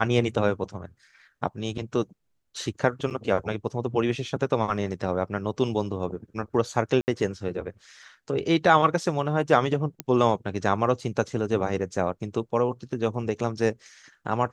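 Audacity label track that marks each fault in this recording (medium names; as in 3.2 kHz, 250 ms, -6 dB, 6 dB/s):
3.100000	3.110000	dropout 8.2 ms
7.010000	7.080000	dropout 69 ms
10.000000	10.000000	pop -12 dBFS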